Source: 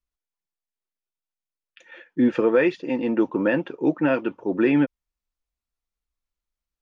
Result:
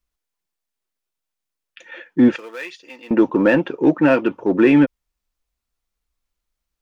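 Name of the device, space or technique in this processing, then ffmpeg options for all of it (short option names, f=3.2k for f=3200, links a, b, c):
parallel distortion: -filter_complex "[0:a]asplit=2[a][b];[b]asoftclip=type=hard:threshold=-22.5dB,volume=-9dB[c];[a][c]amix=inputs=2:normalize=0,asettb=1/sr,asplit=3[d][e][f];[d]atrim=end=2.364[g];[e]atrim=start=2.36:end=3.11,asetpts=PTS-STARTPTS,afade=t=in:d=0.004:c=qsin,afade=t=out:st=0.746:d=0.004:c=qsin,aderivative[h];[f]atrim=start=3.106[i];[g][h]acrossfade=d=0.004:c1=hsin:c2=qsin[j];[j][i]acrossfade=d=0.004:c1=qsin:c2=hsin,volume=5dB"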